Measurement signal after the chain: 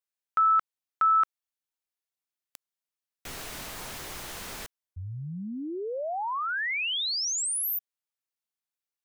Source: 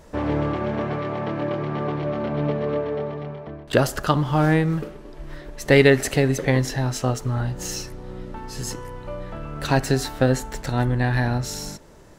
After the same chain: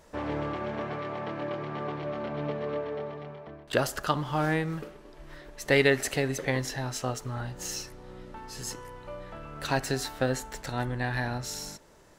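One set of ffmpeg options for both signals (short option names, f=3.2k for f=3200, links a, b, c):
-af "lowshelf=f=430:g=-7.5,volume=-4.5dB"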